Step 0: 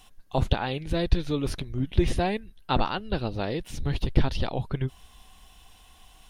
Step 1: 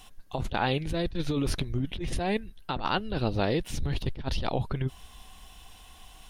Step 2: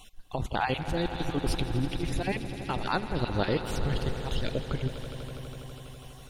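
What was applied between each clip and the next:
negative-ratio compressor -28 dBFS, ratio -1
random spectral dropouts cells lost 24%; swelling echo 82 ms, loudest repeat 5, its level -15 dB

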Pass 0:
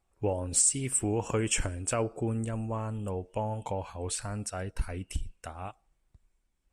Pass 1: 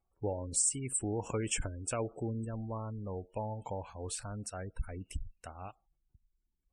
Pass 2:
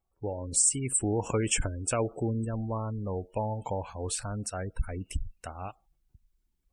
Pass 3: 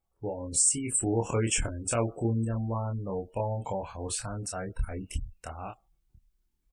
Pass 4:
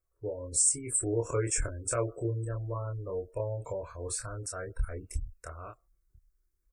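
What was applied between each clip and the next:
spectral gate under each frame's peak -25 dB strong; gain -5.5 dB
AGC gain up to 6.5 dB
doubler 26 ms -3 dB; gain -1.5 dB
fixed phaser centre 810 Hz, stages 6

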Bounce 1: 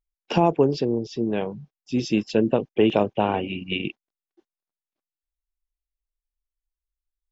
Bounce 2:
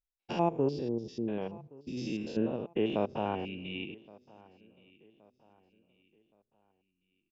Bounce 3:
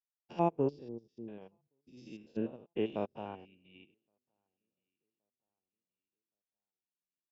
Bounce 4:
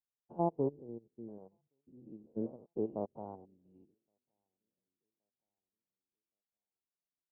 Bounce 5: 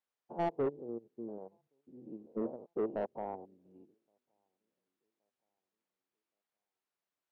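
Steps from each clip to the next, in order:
stepped spectrum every 0.1 s; feedback echo 1.121 s, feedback 39%, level -23.5 dB; gain -8.5 dB
upward expander 2.5:1, over -45 dBFS
inverse Chebyshev low-pass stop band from 1900 Hz, stop band 40 dB; gain -2 dB
overdrive pedal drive 22 dB, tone 1100 Hz, clips at -19.5 dBFS; gain -3.5 dB

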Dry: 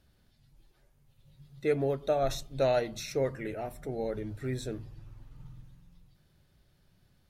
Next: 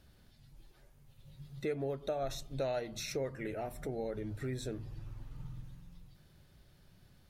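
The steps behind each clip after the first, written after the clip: compressor 2.5:1, threshold -43 dBFS, peak gain reduction 13.5 dB; gain +4 dB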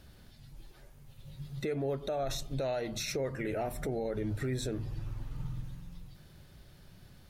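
limiter -33 dBFS, peak gain reduction 8 dB; gain +7 dB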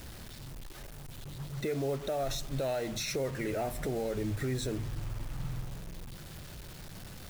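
zero-crossing step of -46 dBFS; requantised 8-bit, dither none

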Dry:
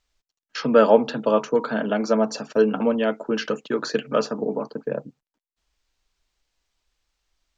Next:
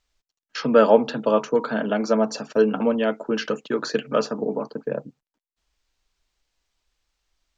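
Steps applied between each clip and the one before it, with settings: nothing audible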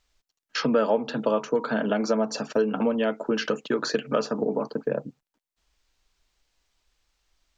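compressor 3:1, threshold -25 dBFS, peak gain reduction 12.5 dB; gain +3 dB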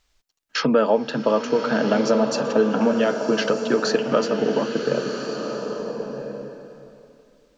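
bloom reverb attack 1.37 s, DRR 5 dB; gain +4 dB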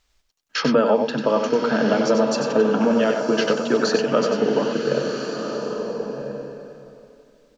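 echo 95 ms -6 dB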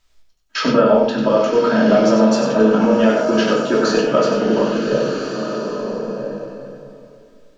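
shoebox room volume 390 m³, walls furnished, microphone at 2.8 m; gain -1 dB

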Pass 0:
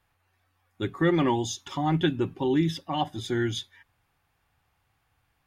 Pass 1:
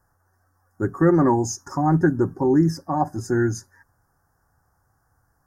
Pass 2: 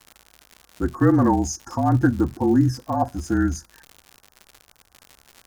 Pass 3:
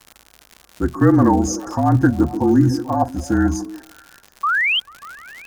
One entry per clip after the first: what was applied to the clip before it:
elliptic band-stop 1600–5400 Hz, stop band 50 dB; gain +6.5 dB
frequency shift -37 Hz; crackle 130/s -31 dBFS
painted sound rise, 4.43–4.8, 1100–3300 Hz -21 dBFS; delay with a stepping band-pass 0.147 s, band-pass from 270 Hz, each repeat 0.7 oct, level -9 dB; gain +3.5 dB

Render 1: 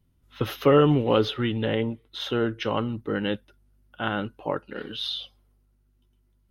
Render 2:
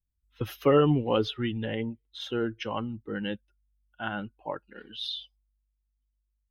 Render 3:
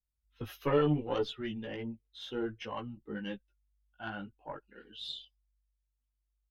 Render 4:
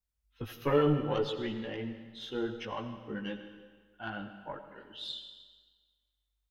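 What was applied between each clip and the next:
per-bin expansion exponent 1.5; gain -2 dB
added harmonics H 2 -11 dB, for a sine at -11.5 dBFS; chorus voices 4, 0.6 Hz, delay 17 ms, depth 3.8 ms; gain -4 dB
reverb RT60 1.5 s, pre-delay 45 ms, DRR 8.5 dB; gain +1 dB

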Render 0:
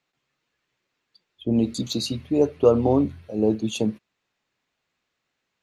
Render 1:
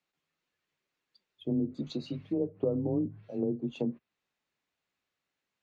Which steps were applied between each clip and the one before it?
frequency shift +21 Hz; treble ducked by the level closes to 370 Hz, closed at -17.5 dBFS; gain -8 dB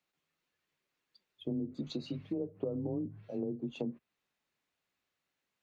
compressor 3:1, threshold -34 dBFS, peak gain reduction 8 dB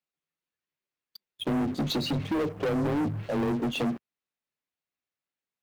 sample leveller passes 5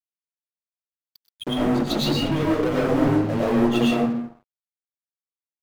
reverb RT60 0.75 s, pre-delay 70 ms, DRR -5.5 dB; crossover distortion -41.5 dBFS; gain +2 dB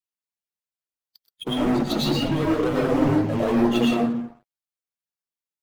bin magnitudes rounded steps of 15 dB

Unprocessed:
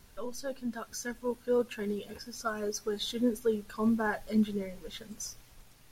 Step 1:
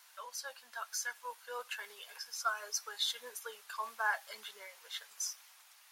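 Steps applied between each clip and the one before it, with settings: HPF 870 Hz 24 dB/oct; gain +2 dB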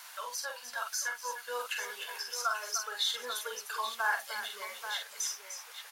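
tapped delay 45/299/835 ms -5.5/-11/-12.5 dB; three-band squash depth 40%; gain +4 dB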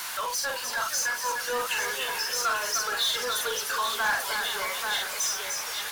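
power-law curve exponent 0.5; warbling echo 0.468 s, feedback 68%, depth 158 cents, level -12 dB

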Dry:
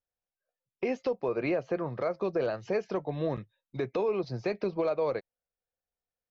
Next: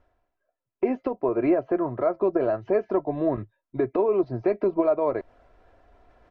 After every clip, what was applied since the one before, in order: LPF 1300 Hz 12 dB/oct; comb 3 ms, depth 64%; reverse; upward compressor, threshold -36 dBFS; reverse; gain +6 dB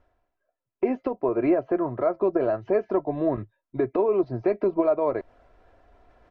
nothing audible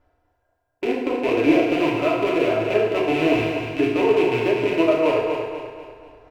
rattling part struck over -33 dBFS, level -19 dBFS; on a send: feedback echo 0.245 s, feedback 44%, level -6.5 dB; on the sum: FDN reverb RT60 1.2 s, low-frequency decay 0.75×, high-frequency decay 0.8×, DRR -4.5 dB; gain -2 dB

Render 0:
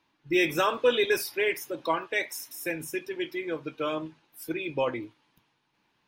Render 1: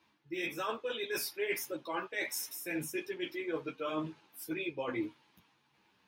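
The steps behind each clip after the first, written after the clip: HPF 60 Hz; reverse; compressor 16:1, threshold -34 dBFS, peak gain reduction 17 dB; reverse; ensemble effect; gain +4.5 dB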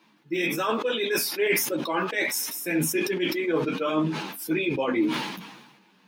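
resonant low shelf 130 Hz -11.5 dB, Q 3; sustainer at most 49 dB/s; gain +9 dB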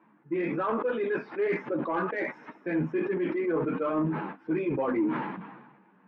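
LPF 1700 Hz 24 dB/oct; in parallel at -0.5 dB: limiter -23.5 dBFS, peak gain reduction 9.5 dB; on the sum: soft clip -13 dBFS, distortion -24 dB; gain -5 dB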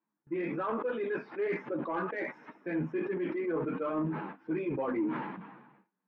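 gate with hold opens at -46 dBFS; gain -4.5 dB

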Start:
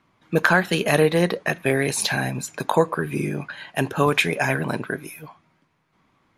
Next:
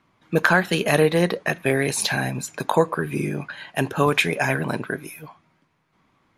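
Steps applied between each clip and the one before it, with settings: nothing audible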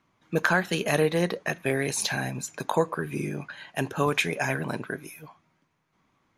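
bell 6300 Hz +5.5 dB 0.34 oct; gain -5.5 dB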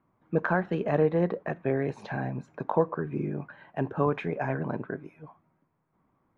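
LPF 1100 Hz 12 dB/oct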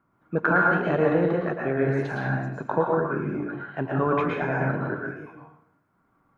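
bell 1400 Hz +12.5 dB 0.26 oct; reverb RT60 0.70 s, pre-delay 0.102 s, DRR -2 dB

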